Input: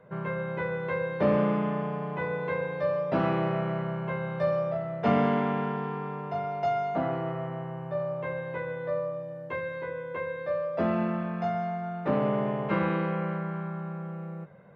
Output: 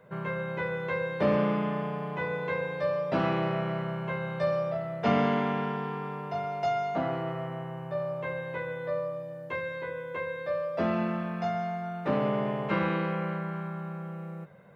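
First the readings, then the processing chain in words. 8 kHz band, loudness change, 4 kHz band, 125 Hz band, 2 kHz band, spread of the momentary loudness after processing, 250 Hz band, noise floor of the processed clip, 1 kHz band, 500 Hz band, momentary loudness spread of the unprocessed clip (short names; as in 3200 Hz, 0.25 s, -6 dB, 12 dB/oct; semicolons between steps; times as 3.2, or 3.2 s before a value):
n/a, -1.0 dB, +4.0 dB, -1.5 dB, +1.0 dB, 9 LU, -1.5 dB, -40 dBFS, -0.5 dB, -1.0 dB, 9 LU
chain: high shelf 3200 Hz +11 dB; gain -1.5 dB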